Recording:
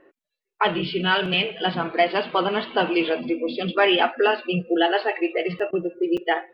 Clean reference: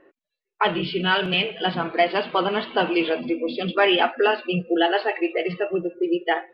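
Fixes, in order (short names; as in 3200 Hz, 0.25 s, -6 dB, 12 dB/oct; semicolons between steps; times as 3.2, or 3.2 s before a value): interpolate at 5.59/6.17, 5.7 ms; interpolate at 5.71, 19 ms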